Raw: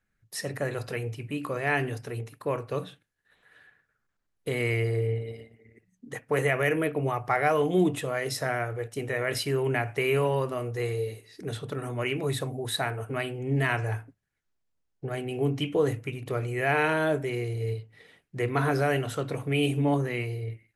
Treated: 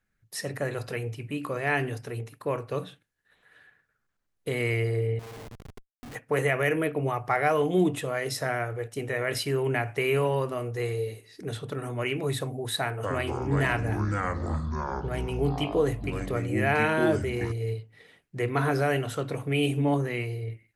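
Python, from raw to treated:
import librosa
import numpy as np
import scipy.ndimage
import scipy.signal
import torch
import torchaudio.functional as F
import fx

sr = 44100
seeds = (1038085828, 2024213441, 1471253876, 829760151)

y = fx.schmitt(x, sr, flips_db=-51.0, at=(5.19, 6.15))
y = fx.echo_pitch(y, sr, ms=240, semitones=-5, count=3, db_per_echo=-3.0, at=(12.79, 17.52))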